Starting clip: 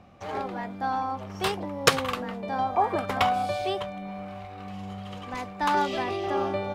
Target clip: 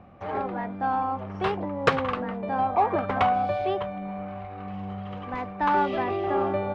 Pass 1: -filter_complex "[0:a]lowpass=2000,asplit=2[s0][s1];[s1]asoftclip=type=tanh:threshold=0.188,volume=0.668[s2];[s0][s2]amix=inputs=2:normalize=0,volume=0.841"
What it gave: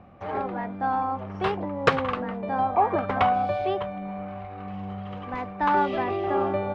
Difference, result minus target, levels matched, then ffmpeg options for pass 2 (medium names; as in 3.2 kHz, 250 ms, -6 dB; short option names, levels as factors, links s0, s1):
saturation: distortion -6 dB
-filter_complex "[0:a]lowpass=2000,asplit=2[s0][s1];[s1]asoftclip=type=tanh:threshold=0.0891,volume=0.668[s2];[s0][s2]amix=inputs=2:normalize=0,volume=0.841"